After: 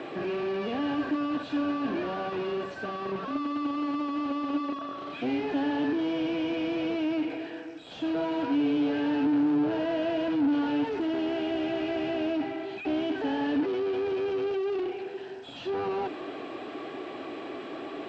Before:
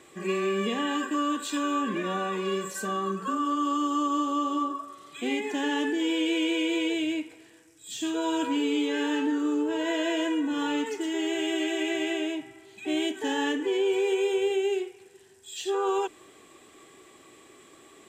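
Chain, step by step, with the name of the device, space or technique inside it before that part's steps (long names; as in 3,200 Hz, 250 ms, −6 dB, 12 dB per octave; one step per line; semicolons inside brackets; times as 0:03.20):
overdrive pedal into a guitar cabinet (mid-hump overdrive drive 38 dB, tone 1,400 Hz, clips at −17 dBFS; loudspeaker in its box 79–4,300 Hz, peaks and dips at 130 Hz +5 dB, 280 Hz +8 dB, 680 Hz +6 dB, 1,100 Hz −6 dB, 2,000 Hz −7 dB, 3,500 Hz −4 dB)
level −7.5 dB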